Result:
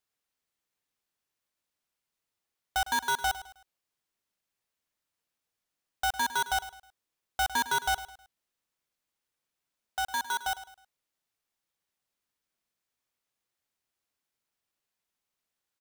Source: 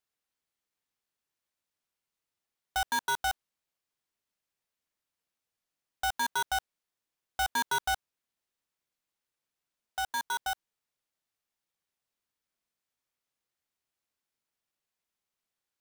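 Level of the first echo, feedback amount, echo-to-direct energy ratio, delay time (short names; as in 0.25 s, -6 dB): -14.5 dB, 36%, -14.0 dB, 0.105 s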